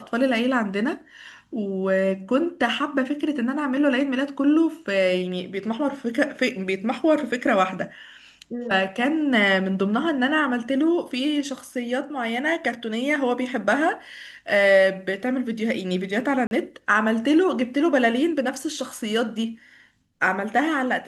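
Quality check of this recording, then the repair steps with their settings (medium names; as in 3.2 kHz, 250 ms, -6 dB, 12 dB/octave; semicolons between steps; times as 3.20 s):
16.47–16.51 s: dropout 41 ms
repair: interpolate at 16.47 s, 41 ms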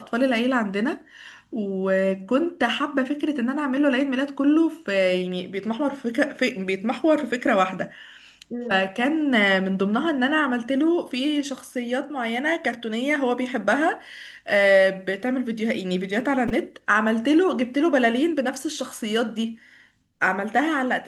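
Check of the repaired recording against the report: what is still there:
nothing left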